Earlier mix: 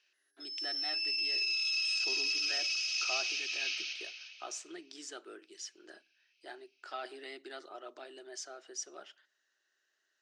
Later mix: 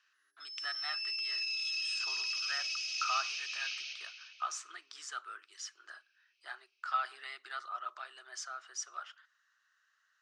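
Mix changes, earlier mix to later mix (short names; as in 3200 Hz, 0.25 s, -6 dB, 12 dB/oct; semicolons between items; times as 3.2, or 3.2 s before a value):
speech: add resonant high-pass 1200 Hz, resonance Q 4.7; background -3.5 dB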